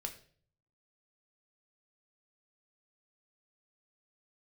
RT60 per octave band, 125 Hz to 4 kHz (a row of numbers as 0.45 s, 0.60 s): 0.95 s, 0.65 s, 0.55 s, 0.40 s, 0.45 s, 0.45 s